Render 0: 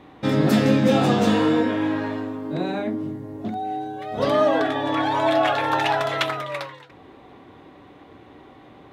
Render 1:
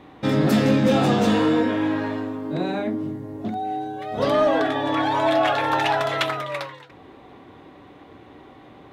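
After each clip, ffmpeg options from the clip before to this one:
ffmpeg -i in.wav -af "acontrast=89,volume=-6.5dB" out.wav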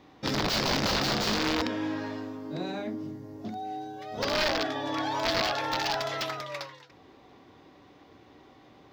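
ffmpeg -i in.wav -af "aexciter=amount=9.1:drive=4.4:freq=5800,aeval=exprs='(mod(4.47*val(0)+1,2)-1)/4.47':channel_layout=same,highshelf=frequency=6600:width_type=q:width=3:gain=-13.5,volume=-9dB" out.wav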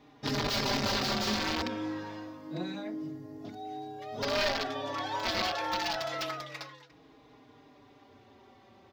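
ffmpeg -i in.wav -filter_complex "[0:a]asplit=2[link_01][link_02];[link_02]adelay=4.4,afreqshift=-0.27[link_03];[link_01][link_03]amix=inputs=2:normalize=1" out.wav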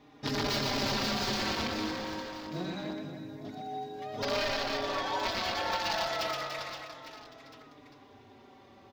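ffmpeg -i in.wav -af "aecho=1:1:120|288|523.2|852.5|1313:0.631|0.398|0.251|0.158|0.1,alimiter=limit=-20.5dB:level=0:latency=1:release=203" out.wav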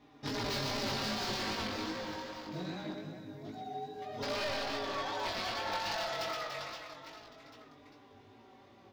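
ffmpeg -i in.wav -af "flanger=delay=17:depth=4.5:speed=2.5,asoftclip=type=tanh:threshold=-27dB" out.wav

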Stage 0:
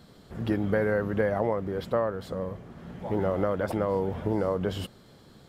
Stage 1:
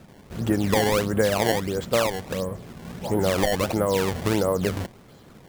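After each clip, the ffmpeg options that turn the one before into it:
ffmpeg -i in.wav -af "acrusher=samples=20:mix=1:aa=0.000001:lfo=1:lforange=32:lforate=1.5,volume=4.5dB" out.wav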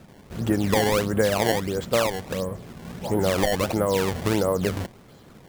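ffmpeg -i in.wav -af anull out.wav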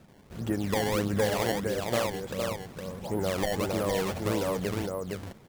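ffmpeg -i in.wav -af "aecho=1:1:462:0.631,volume=-7dB" out.wav

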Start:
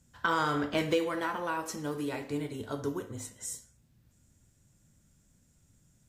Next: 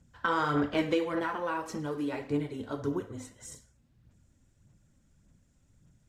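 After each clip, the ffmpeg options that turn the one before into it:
ffmpeg -i in.wav -af "aemphasis=mode=reproduction:type=50kf,aphaser=in_gain=1:out_gain=1:delay=3.9:decay=0.4:speed=1.7:type=sinusoidal" out.wav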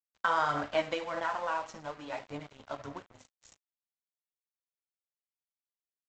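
ffmpeg -i in.wav -af "lowshelf=frequency=510:width_type=q:width=3:gain=-7,aresample=16000,aeval=exprs='sgn(val(0))*max(abs(val(0))-0.00473,0)':channel_layout=same,aresample=44100" out.wav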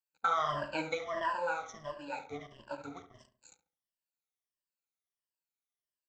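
ffmpeg -i in.wav -filter_complex "[0:a]afftfilt=real='re*pow(10,21/40*sin(2*PI*(1.3*log(max(b,1)*sr/1024/100)/log(2)-(-1.5)*(pts-256)/sr)))':imag='im*pow(10,21/40*sin(2*PI*(1.3*log(max(b,1)*sr/1024/100)/log(2)-(-1.5)*(pts-256)/sr)))':win_size=1024:overlap=0.75,asplit=2[link_01][link_02];[link_02]adelay=70,lowpass=frequency=1500:poles=1,volume=-10dB,asplit=2[link_03][link_04];[link_04]adelay=70,lowpass=frequency=1500:poles=1,volume=0.39,asplit=2[link_05][link_06];[link_06]adelay=70,lowpass=frequency=1500:poles=1,volume=0.39,asplit=2[link_07][link_08];[link_08]adelay=70,lowpass=frequency=1500:poles=1,volume=0.39[link_09];[link_01][link_03][link_05][link_07][link_09]amix=inputs=5:normalize=0,volume=-6.5dB" out.wav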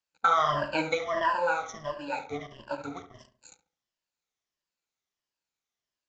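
ffmpeg -i in.wav -af "aresample=16000,aresample=44100,volume=7dB" out.wav

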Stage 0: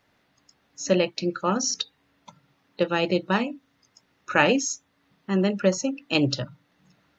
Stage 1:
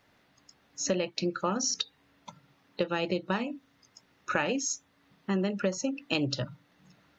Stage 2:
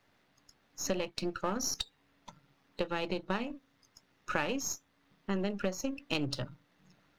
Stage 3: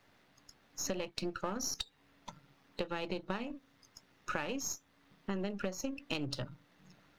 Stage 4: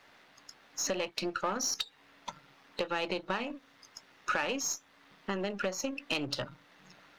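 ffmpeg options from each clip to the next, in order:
ffmpeg -i in.wav -af "acompressor=threshold=-27dB:ratio=5,volume=1dB" out.wav
ffmpeg -i in.wav -af "aeval=exprs='if(lt(val(0),0),0.447*val(0),val(0))':channel_layout=same,volume=-2dB" out.wav
ffmpeg -i in.wav -af "acompressor=threshold=-41dB:ratio=2,volume=3dB" out.wav
ffmpeg -i in.wav -filter_complex "[0:a]asplit=2[link_01][link_02];[link_02]highpass=frequency=720:poles=1,volume=15dB,asoftclip=type=tanh:threshold=-17.5dB[link_03];[link_01][link_03]amix=inputs=2:normalize=0,lowpass=frequency=5100:poles=1,volume=-6dB" out.wav

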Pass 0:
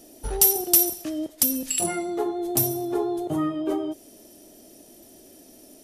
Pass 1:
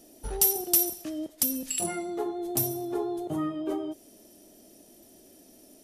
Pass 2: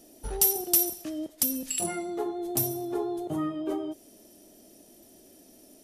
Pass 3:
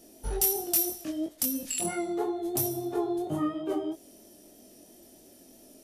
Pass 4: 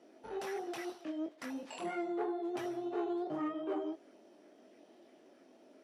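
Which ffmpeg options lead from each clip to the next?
ffmpeg -i in.wav -af "equalizer=frequency=200:width=6.5:gain=4,volume=-5dB" out.wav
ffmpeg -i in.wav -af anull out.wav
ffmpeg -i in.wav -filter_complex "[0:a]asplit=2[link_01][link_02];[link_02]alimiter=limit=-20.5dB:level=0:latency=1:release=245,volume=-3dB[link_03];[link_01][link_03]amix=inputs=2:normalize=0,volume=12dB,asoftclip=hard,volume=-12dB,flanger=delay=20:depth=3.6:speed=3,volume=-1dB" out.wav
ffmpeg -i in.wav -filter_complex "[0:a]asplit=2[link_01][link_02];[link_02]acrusher=samples=9:mix=1:aa=0.000001:lfo=1:lforange=9:lforate=0.76,volume=-10dB[link_03];[link_01][link_03]amix=inputs=2:normalize=0,asoftclip=type=tanh:threshold=-22.5dB,highpass=320,lowpass=2800,volume=-4.5dB" out.wav

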